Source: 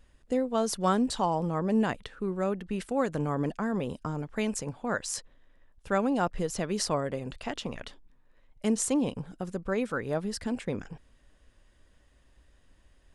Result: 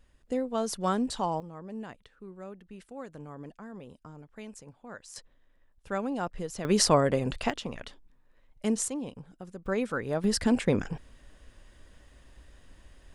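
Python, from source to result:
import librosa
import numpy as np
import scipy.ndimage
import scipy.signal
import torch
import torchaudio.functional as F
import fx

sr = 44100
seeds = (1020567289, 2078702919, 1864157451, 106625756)

y = fx.gain(x, sr, db=fx.steps((0.0, -2.5), (1.4, -14.0), (5.16, -5.0), (6.65, 7.0), (7.5, -1.0), (8.88, -8.5), (9.66, 0.0), (10.24, 7.5)))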